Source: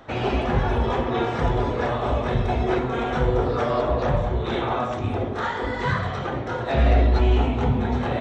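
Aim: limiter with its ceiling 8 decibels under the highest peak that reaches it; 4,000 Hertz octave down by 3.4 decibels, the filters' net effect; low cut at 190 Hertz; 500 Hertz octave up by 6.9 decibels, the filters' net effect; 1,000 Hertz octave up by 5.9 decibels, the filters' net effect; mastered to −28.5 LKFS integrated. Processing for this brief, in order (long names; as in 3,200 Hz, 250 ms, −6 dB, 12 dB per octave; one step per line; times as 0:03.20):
high-pass filter 190 Hz
parametric band 500 Hz +7.5 dB
parametric band 1,000 Hz +5 dB
parametric band 4,000 Hz −5 dB
level −6 dB
brickwall limiter −19 dBFS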